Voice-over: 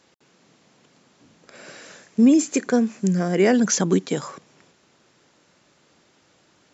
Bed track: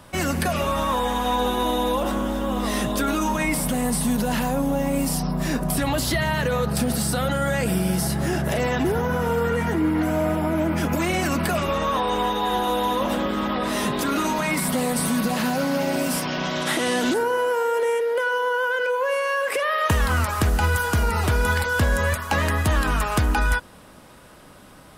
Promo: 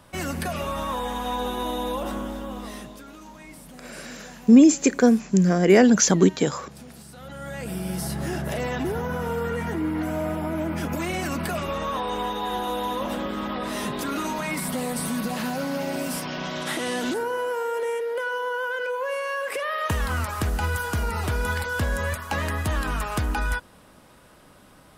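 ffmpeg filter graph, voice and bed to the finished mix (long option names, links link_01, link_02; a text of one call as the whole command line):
ffmpeg -i stem1.wav -i stem2.wav -filter_complex "[0:a]adelay=2300,volume=2.5dB[link_01];[1:a]volume=11dB,afade=type=out:start_time=2.15:duration=0.87:silence=0.158489,afade=type=in:start_time=7.15:duration=1:silence=0.149624[link_02];[link_01][link_02]amix=inputs=2:normalize=0" out.wav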